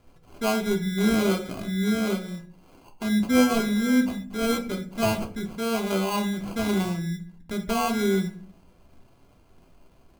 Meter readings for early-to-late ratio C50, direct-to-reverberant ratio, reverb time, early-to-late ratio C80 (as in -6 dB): 13.0 dB, 3.5 dB, 0.45 s, 16.5 dB